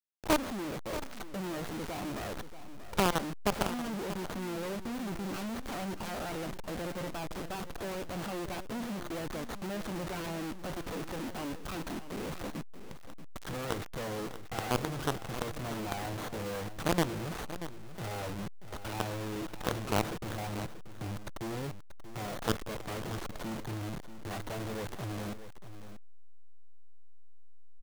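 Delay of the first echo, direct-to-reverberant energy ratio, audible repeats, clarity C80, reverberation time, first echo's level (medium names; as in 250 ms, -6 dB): 634 ms, no reverb, 1, no reverb, no reverb, -12.5 dB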